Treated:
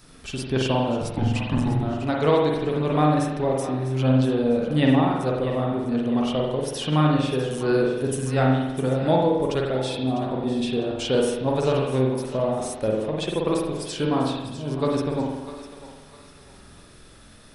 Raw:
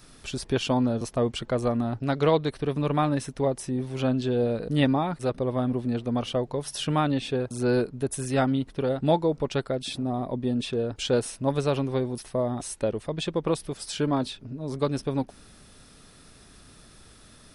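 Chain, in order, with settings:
0:01.02–0:01.83: frequency shifter −360 Hz
feedback echo with a high-pass in the loop 651 ms, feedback 41%, high-pass 660 Hz, level −12 dB
spring reverb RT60 1 s, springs 46 ms, chirp 40 ms, DRR −1 dB

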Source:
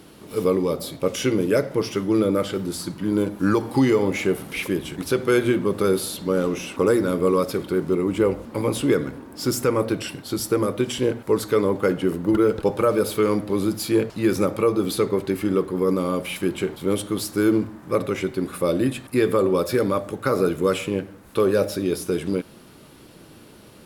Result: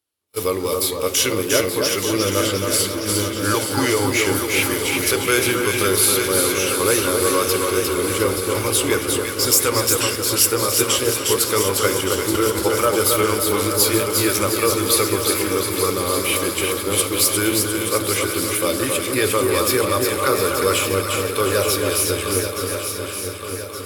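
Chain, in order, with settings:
spectral tilt +3.5 dB per octave
echo with a time of its own for lows and highs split 1,500 Hz, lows 270 ms, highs 354 ms, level −4 dB
noise gate −30 dBFS, range −40 dB
low shelf with overshoot 120 Hz +8.5 dB, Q 3
feedback echo with a long and a short gap by turns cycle 1,169 ms, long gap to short 3 to 1, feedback 54%, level −8.5 dB
level +3 dB

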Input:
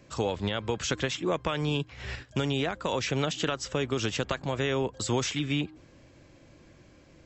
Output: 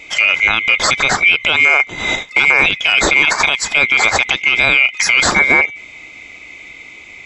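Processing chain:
neighbouring bands swapped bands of 2,000 Hz
high-shelf EQ 5,100 Hz −5.5 dB
boost into a limiter +21 dB
level −1 dB

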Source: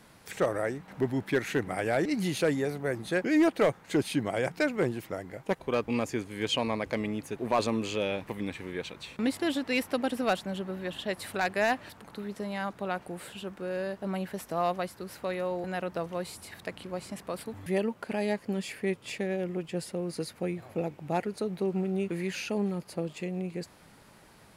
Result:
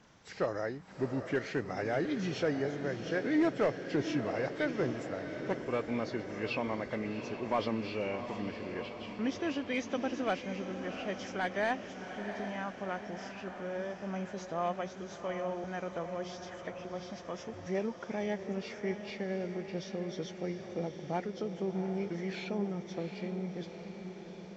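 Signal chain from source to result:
hearing-aid frequency compression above 1,900 Hz 1.5 to 1
feedback delay with all-pass diffusion 733 ms, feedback 64%, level −9 dB
level −5 dB

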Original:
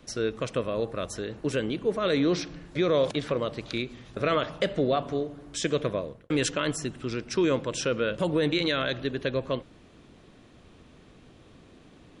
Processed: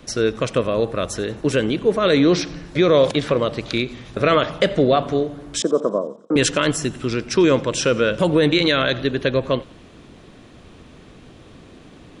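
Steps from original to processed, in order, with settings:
0:05.62–0:06.36: elliptic band-pass filter 200–1,200 Hz, stop band 40 dB
feedback echo with a high-pass in the loop 90 ms, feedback 59%, high-pass 760 Hz, level −22 dB
level +9 dB

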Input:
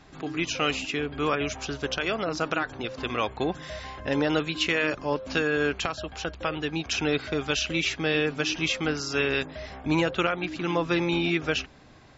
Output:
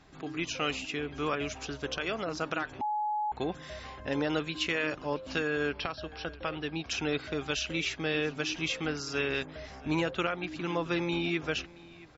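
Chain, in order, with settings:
0:05.69–0:06.86: linear-phase brick-wall low-pass 5,800 Hz
single-tap delay 673 ms −21 dB
0:02.81–0:03.32: beep over 845 Hz −22.5 dBFS
level −5.5 dB

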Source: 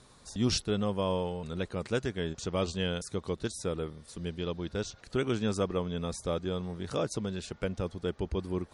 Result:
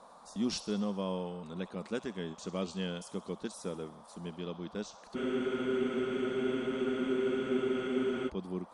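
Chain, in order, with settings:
low shelf with overshoot 150 Hz −8.5 dB, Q 3
delay with a high-pass on its return 65 ms, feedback 66%, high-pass 3,100 Hz, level −12.5 dB
noise in a band 490–1,200 Hz −49 dBFS
frozen spectrum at 0:05.17, 3.10 s
level −7 dB

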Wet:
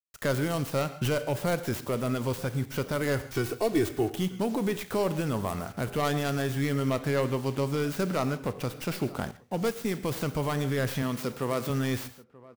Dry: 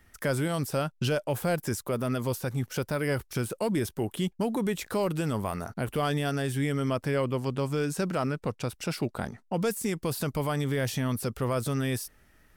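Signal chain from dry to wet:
stylus tracing distortion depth 0.22 ms
0:03.34–0:04.12: comb filter 2.7 ms, depth 80%
0:11.02–0:11.70: high-pass filter 160 Hz
bit reduction 8 bits
slap from a distant wall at 160 metres, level −21 dB
convolution reverb, pre-delay 3 ms, DRR 11 dB
0:09.31–0:09.85: expander for the loud parts 1.5 to 1, over −40 dBFS

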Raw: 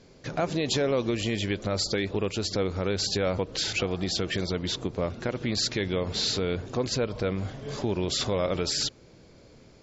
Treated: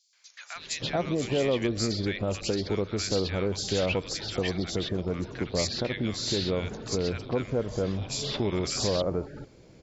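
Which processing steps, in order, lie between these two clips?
three-band delay without the direct sound highs, mids, lows 130/560 ms, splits 1,300/4,300 Hz

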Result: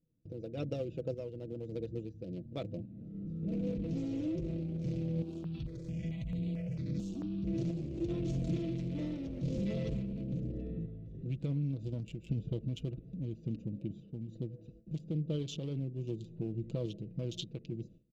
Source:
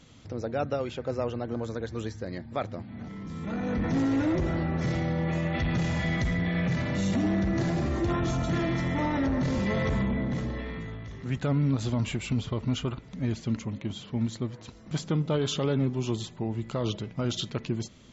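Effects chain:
adaptive Wiener filter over 41 samples
noise gate with hold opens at −43 dBFS
flat-topped bell 1,200 Hz −16 dB
comb filter 6.1 ms, depth 53%
downward compressor 2.5 to 1, threshold −33 dBFS, peak gain reduction 9 dB
sample-and-hold tremolo
0:05.22–0:07.45: step-sequenced phaser 4.5 Hz 540–5,600 Hz

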